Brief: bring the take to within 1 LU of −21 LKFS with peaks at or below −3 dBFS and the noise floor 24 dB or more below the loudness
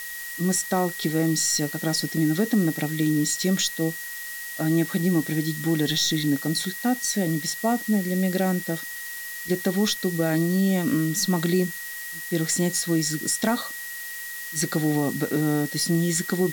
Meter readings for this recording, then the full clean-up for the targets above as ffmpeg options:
interfering tone 1,900 Hz; level of the tone −35 dBFS; background noise floor −35 dBFS; target noise floor −49 dBFS; integrated loudness −24.5 LKFS; sample peak −9.5 dBFS; target loudness −21.0 LKFS
→ -af "bandreject=frequency=1900:width=30"
-af "afftdn=noise_reduction=14:noise_floor=-35"
-af "volume=3.5dB"

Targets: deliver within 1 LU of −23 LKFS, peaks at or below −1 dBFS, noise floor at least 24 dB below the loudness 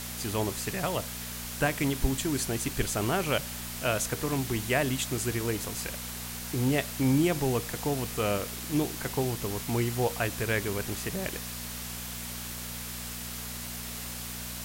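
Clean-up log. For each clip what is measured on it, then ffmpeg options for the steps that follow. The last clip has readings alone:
mains hum 60 Hz; hum harmonics up to 240 Hz; level of the hum −40 dBFS; background noise floor −38 dBFS; target noise floor −55 dBFS; integrated loudness −30.5 LKFS; sample peak −12.0 dBFS; target loudness −23.0 LKFS
→ -af "bandreject=frequency=60:width_type=h:width=4,bandreject=frequency=120:width_type=h:width=4,bandreject=frequency=180:width_type=h:width=4,bandreject=frequency=240:width_type=h:width=4"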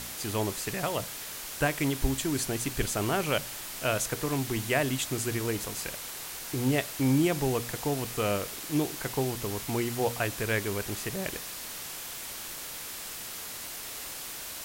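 mains hum none found; background noise floor −40 dBFS; target noise floor −55 dBFS
→ -af "afftdn=noise_reduction=15:noise_floor=-40"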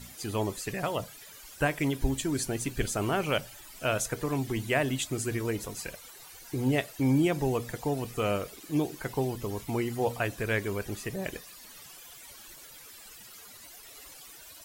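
background noise floor −50 dBFS; target noise floor −55 dBFS
→ -af "afftdn=noise_reduction=6:noise_floor=-50"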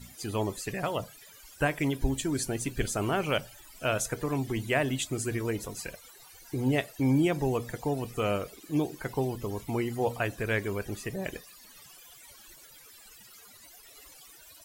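background noise floor −53 dBFS; target noise floor −55 dBFS
→ -af "afftdn=noise_reduction=6:noise_floor=-53"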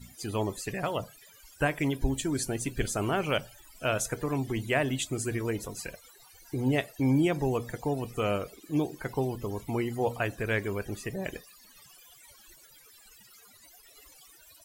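background noise floor −56 dBFS; integrated loudness −31.0 LKFS; sample peak −12.0 dBFS; target loudness −23.0 LKFS
→ -af "volume=8dB"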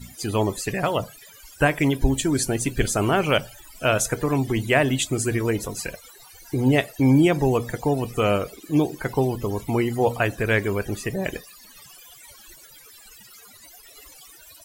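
integrated loudness −23.0 LKFS; sample peak −4.0 dBFS; background noise floor −48 dBFS

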